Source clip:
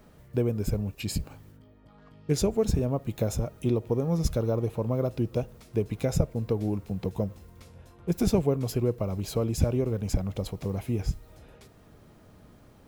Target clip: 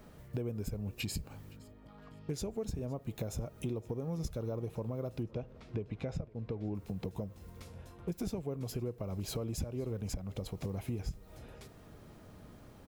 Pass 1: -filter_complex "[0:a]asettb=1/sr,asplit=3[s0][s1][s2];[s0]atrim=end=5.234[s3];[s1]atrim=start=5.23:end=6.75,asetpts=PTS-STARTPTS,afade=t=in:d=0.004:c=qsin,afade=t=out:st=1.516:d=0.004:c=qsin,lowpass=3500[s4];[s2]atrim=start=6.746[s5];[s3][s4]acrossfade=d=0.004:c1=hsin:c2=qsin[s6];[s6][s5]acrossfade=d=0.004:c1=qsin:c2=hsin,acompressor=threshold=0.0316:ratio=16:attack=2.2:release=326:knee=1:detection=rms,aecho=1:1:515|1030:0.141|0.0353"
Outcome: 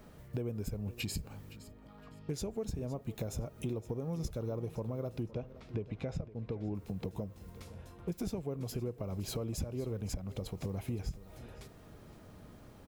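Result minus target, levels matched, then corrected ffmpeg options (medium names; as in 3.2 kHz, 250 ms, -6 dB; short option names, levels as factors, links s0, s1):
echo-to-direct +6.5 dB
-filter_complex "[0:a]asettb=1/sr,asplit=3[s0][s1][s2];[s0]atrim=end=5.234[s3];[s1]atrim=start=5.23:end=6.75,asetpts=PTS-STARTPTS,afade=t=in:d=0.004:c=qsin,afade=t=out:st=1.516:d=0.004:c=qsin,lowpass=3500[s4];[s2]atrim=start=6.746[s5];[s3][s4]acrossfade=d=0.004:c1=hsin:c2=qsin[s6];[s6][s5]acrossfade=d=0.004:c1=qsin:c2=hsin,acompressor=threshold=0.0316:ratio=16:attack=2.2:release=326:knee=1:detection=rms,aecho=1:1:515|1030:0.0668|0.0167"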